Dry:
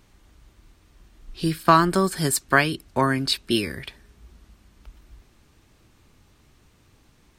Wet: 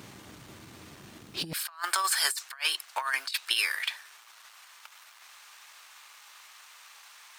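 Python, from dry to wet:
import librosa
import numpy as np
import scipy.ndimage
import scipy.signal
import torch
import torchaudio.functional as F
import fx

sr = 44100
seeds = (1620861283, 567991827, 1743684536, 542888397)

y = fx.law_mismatch(x, sr, coded='mu')
y = fx.highpass(y, sr, hz=fx.steps((0.0, 110.0), (1.53, 940.0)), slope=24)
y = fx.over_compress(y, sr, threshold_db=-29.0, ratio=-0.5)
y = fx.transformer_sat(y, sr, knee_hz=2500.0)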